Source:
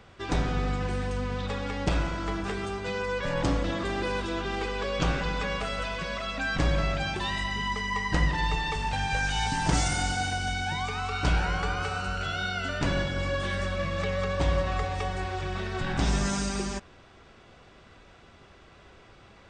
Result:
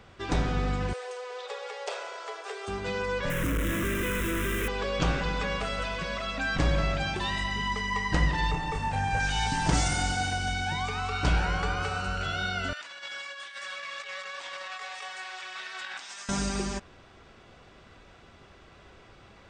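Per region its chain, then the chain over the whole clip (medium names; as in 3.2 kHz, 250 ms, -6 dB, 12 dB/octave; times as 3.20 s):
0.93–2.68 s: steep high-pass 400 Hz 96 dB/octave + peaking EQ 1.6 kHz -4.5 dB 2.8 oct
3.30–4.68 s: companded quantiser 2-bit + static phaser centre 1.9 kHz, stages 4
8.51–9.20 s: peaking EQ 4 kHz -10 dB 1.7 oct + doubling 29 ms -3.5 dB
12.73–16.29 s: high-pass 1.4 kHz + compressor with a negative ratio -39 dBFS, ratio -0.5
whole clip: none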